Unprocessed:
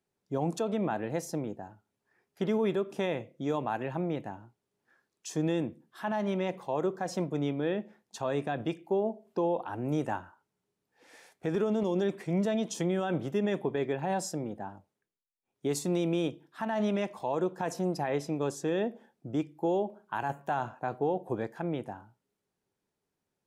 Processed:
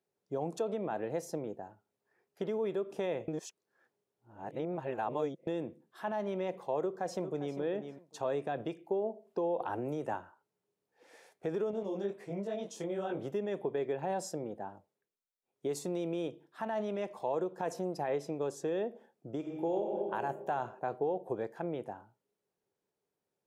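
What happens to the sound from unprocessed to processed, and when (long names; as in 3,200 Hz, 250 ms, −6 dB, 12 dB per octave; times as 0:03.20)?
0:03.28–0:05.47: reverse
0:06.82–0:07.58: delay throw 400 ms, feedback 15%, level −11 dB
0:09.60–0:10.14: multiband upward and downward compressor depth 70%
0:11.71–0:13.19: micro pitch shift up and down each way 49 cents
0:19.37–0:19.89: thrown reverb, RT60 1.9 s, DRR 2.5 dB
whole clip: parametric band 200 Hz +9.5 dB 2.6 octaves; downward compressor, threshold −22 dBFS; low shelf with overshoot 340 Hz −8 dB, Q 1.5; level −5.5 dB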